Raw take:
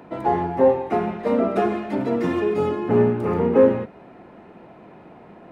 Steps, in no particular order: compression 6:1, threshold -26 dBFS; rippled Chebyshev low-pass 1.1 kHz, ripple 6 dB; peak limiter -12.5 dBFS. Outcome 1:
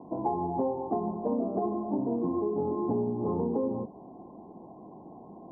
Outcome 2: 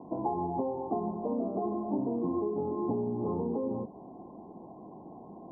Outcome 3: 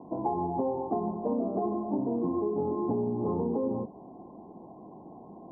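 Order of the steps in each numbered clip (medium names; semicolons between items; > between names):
rippled Chebyshev low-pass > peak limiter > compression; peak limiter > compression > rippled Chebyshev low-pass; peak limiter > rippled Chebyshev low-pass > compression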